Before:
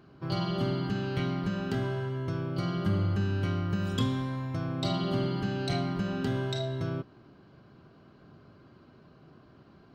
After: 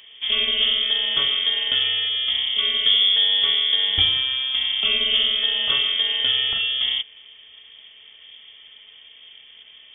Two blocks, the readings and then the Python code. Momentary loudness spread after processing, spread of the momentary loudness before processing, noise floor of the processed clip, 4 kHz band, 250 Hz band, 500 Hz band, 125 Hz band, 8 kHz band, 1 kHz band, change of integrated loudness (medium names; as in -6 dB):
5 LU, 4 LU, -48 dBFS, +27.0 dB, under -15 dB, -5.5 dB, -17.0 dB, under -25 dB, -2.0 dB, +13.5 dB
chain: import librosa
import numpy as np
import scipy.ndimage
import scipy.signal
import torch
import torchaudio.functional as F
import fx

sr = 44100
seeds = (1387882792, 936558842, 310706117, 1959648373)

y = fx.freq_invert(x, sr, carrier_hz=3400)
y = y * 10.0 ** (9.0 / 20.0)